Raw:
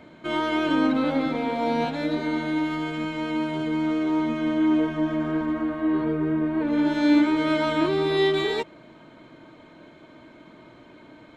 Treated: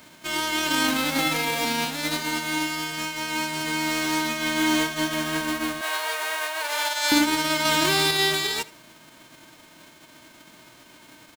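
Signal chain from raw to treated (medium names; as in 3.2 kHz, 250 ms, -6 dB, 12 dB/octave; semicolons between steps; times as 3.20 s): formants flattened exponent 0.3; 1.18–1.65 s: comb 6.1 ms, depth 97%; 5.81–7.12 s: steep high-pass 510 Hz 36 dB/octave; delay 78 ms -20.5 dB; 7.65–8.11 s: level flattener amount 100%; trim -1.5 dB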